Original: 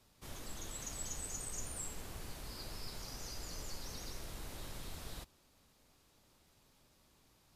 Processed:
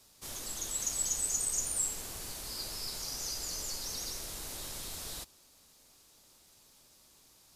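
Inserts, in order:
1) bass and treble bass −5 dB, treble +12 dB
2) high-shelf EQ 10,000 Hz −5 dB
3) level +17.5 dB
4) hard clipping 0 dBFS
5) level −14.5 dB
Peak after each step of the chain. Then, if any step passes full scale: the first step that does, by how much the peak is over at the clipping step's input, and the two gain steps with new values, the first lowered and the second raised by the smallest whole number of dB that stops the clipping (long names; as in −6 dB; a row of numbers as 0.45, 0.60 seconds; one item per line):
−20.0, −21.5, −4.0, −4.0, −18.5 dBFS
no step passes full scale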